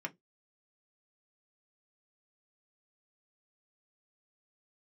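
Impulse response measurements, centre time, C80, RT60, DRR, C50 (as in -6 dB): 5 ms, 38.0 dB, no single decay rate, 2.5 dB, 26.5 dB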